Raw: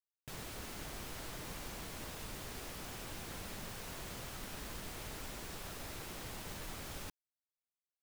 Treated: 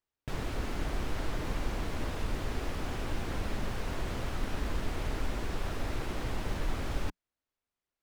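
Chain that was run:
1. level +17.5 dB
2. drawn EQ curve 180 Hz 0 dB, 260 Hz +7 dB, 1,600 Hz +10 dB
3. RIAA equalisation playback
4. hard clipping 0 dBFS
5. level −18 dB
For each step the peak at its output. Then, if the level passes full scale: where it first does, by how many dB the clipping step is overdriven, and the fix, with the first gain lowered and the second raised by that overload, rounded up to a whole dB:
−15.0, −7.5, −1.5, −1.5, −19.5 dBFS
no step passes full scale

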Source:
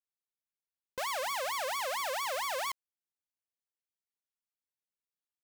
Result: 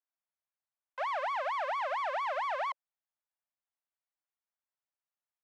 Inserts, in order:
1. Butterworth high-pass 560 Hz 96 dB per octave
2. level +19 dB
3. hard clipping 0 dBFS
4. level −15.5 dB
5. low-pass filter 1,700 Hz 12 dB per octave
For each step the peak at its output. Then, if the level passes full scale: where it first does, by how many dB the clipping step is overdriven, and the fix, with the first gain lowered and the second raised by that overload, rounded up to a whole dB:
−23.5, −4.5, −4.5, −20.0, −25.0 dBFS
no step passes full scale

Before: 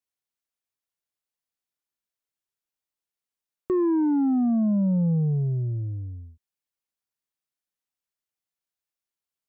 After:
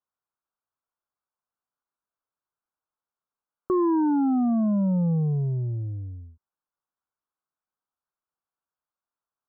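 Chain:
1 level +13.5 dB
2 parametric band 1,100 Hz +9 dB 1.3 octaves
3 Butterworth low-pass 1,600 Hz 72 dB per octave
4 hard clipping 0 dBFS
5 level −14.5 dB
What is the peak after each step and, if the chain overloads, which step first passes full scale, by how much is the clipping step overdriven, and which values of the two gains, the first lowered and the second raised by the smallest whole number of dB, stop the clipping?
−6.0, −3.0, −2.5, −2.5, −17.0 dBFS
no step passes full scale

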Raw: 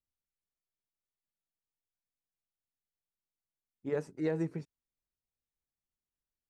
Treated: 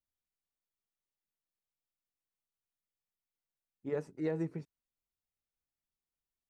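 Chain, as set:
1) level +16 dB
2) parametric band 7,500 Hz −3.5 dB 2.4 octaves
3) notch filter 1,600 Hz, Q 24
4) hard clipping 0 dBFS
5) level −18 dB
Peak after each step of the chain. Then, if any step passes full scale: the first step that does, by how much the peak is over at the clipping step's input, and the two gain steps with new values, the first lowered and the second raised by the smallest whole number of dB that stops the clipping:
−5.0, −5.5, −5.5, −5.5, −23.5 dBFS
no step passes full scale

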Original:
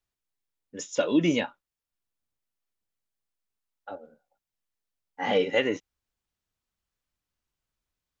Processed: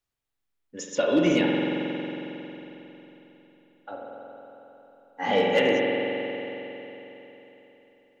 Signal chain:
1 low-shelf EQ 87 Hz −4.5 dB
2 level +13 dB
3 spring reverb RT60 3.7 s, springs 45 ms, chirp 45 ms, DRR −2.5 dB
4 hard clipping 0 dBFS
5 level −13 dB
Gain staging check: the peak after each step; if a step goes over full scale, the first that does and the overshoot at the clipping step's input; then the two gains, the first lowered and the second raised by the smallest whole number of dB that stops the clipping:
−12.0, +1.0, +4.0, 0.0, −13.0 dBFS
step 2, 4.0 dB
step 2 +9 dB, step 5 −9 dB

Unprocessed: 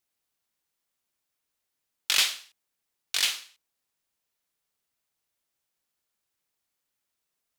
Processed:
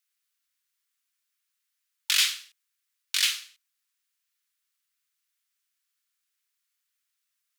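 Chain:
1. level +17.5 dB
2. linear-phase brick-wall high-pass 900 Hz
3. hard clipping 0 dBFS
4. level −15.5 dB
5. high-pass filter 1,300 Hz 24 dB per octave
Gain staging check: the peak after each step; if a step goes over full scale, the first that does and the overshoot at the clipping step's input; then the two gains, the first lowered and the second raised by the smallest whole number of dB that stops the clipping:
+8.5, +8.5, 0.0, −15.5, −10.0 dBFS
step 1, 8.5 dB
step 1 +8.5 dB, step 4 −6.5 dB

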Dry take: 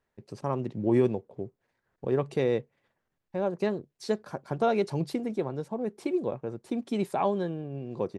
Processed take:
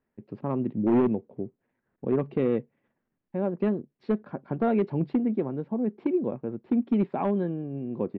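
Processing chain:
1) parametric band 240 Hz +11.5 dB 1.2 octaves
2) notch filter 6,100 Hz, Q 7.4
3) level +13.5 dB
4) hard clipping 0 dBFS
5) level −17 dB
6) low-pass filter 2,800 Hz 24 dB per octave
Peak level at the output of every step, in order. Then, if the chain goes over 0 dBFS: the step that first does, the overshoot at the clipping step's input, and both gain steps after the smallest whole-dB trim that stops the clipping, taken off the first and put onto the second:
−5.5, −5.5, +8.0, 0.0, −17.0, −16.5 dBFS
step 3, 8.0 dB
step 3 +5.5 dB, step 5 −9 dB

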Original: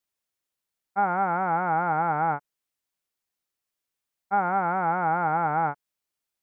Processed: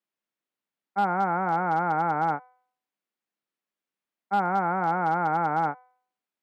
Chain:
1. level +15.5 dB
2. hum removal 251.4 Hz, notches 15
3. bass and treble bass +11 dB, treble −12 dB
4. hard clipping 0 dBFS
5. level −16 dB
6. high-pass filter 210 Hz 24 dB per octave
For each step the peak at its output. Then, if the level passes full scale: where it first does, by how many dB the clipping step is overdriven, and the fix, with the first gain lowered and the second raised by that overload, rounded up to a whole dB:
+3.0, +3.0, +3.0, 0.0, −16.0, −14.0 dBFS
step 1, 3.0 dB
step 1 +12.5 dB, step 5 −13 dB

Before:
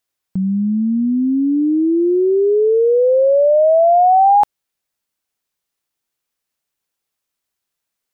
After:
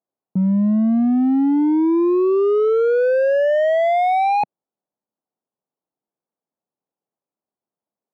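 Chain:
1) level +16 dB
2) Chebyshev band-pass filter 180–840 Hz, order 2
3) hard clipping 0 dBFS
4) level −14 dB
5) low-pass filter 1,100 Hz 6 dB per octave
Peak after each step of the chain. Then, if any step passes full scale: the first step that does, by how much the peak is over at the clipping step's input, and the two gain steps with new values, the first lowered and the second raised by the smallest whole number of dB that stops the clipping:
+9.0, +8.5, 0.0, −14.0, −14.0 dBFS
step 1, 8.5 dB
step 1 +7 dB, step 4 −5 dB

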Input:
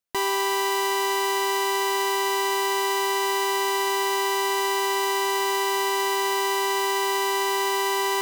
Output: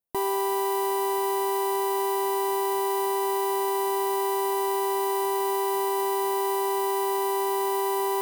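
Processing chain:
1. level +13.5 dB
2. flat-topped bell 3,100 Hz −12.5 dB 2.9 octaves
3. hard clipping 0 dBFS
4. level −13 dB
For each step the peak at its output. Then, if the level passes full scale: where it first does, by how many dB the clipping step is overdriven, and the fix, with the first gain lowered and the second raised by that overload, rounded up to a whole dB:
−2.5, −4.0, −4.0, −17.0 dBFS
no step passes full scale

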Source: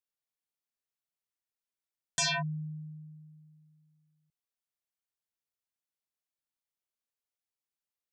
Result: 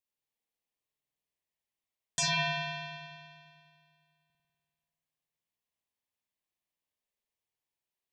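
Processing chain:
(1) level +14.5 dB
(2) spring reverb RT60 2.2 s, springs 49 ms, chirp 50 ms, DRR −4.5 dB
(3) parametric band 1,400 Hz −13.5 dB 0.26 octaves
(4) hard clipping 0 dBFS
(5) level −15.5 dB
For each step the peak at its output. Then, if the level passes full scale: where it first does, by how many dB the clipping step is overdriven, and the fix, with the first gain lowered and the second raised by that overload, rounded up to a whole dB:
−9.5, −3.5, −3.5, −3.5, −19.0 dBFS
no step passes full scale

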